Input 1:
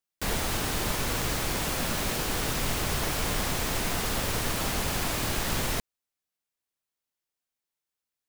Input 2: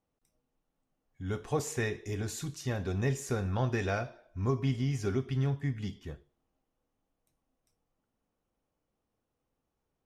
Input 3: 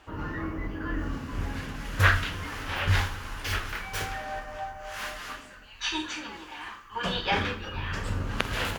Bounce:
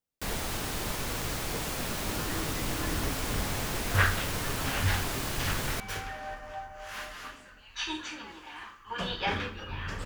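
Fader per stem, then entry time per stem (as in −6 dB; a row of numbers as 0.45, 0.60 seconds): −4.5, −13.5, −4.0 decibels; 0.00, 0.00, 1.95 seconds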